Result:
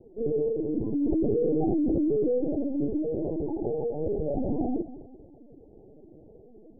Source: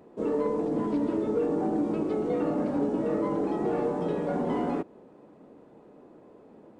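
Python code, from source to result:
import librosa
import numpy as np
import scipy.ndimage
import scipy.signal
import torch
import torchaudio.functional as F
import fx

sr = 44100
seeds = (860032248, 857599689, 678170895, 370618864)

y = fx.spec_expand(x, sr, power=1.9)
y = fx.rider(y, sr, range_db=10, speed_s=2.0)
y = fx.highpass(y, sr, hz=270.0, slope=6, at=(3.04, 4.0))
y = fx.echo_feedback(y, sr, ms=206, feedback_pct=40, wet_db=-15.0)
y = fx.lpc_vocoder(y, sr, seeds[0], excitation='pitch_kept', order=10)
y = scipy.signal.sosfilt(scipy.signal.butter(16, 860.0, 'lowpass', fs=sr, output='sos'), y)
y = fx.env_flatten(y, sr, amount_pct=100, at=(1.01, 2.38), fade=0.02)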